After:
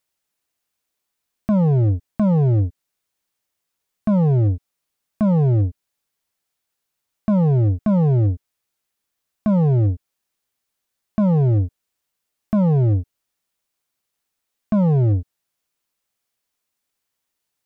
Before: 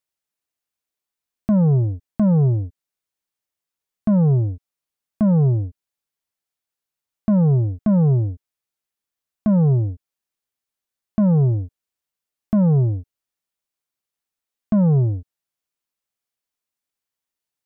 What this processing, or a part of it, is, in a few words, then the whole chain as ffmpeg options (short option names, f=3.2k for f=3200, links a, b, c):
limiter into clipper: -af "alimiter=limit=-20dB:level=0:latency=1:release=15,asoftclip=type=hard:threshold=-22dB,volume=7.5dB"